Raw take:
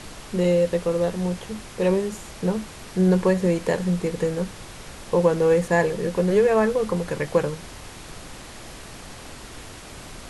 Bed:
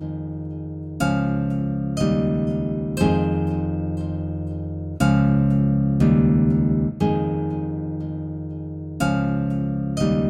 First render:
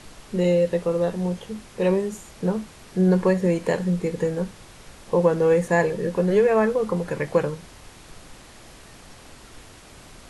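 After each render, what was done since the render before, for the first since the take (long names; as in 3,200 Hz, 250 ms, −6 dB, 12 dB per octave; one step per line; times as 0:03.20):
noise reduction from a noise print 6 dB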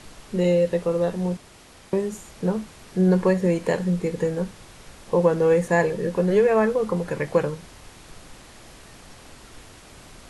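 0:01.37–0:01.93: fill with room tone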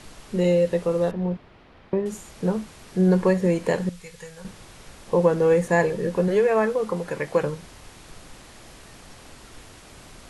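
0:01.11–0:02.06: high-frequency loss of the air 340 metres
0:03.89–0:04.45: guitar amp tone stack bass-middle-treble 10-0-10
0:06.28–0:07.43: low-shelf EQ 220 Hz −7.5 dB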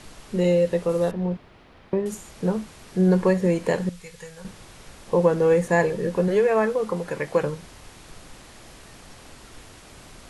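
0:00.89–0:02.15: high-shelf EQ 8,000 Hz +9 dB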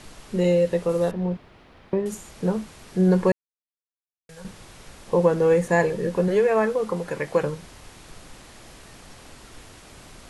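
0:03.32–0:04.29: silence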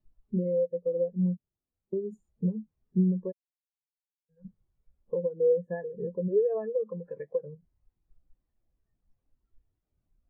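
downward compressor 12 to 1, threshold −27 dBFS, peak gain reduction 15 dB
every bin expanded away from the loudest bin 2.5 to 1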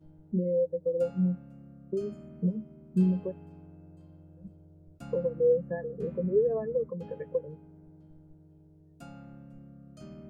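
mix in bed −26.5 dB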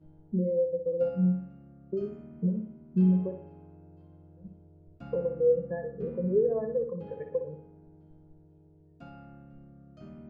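high-frequency loss of the air 240 metres
flutter between parallel walls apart 10.3 metres, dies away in 0.44 s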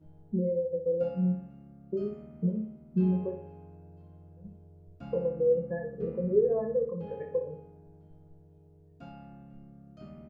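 double-tracking delay 24 ms −6 dB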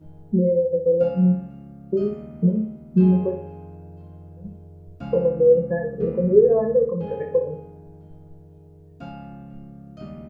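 level +10 dB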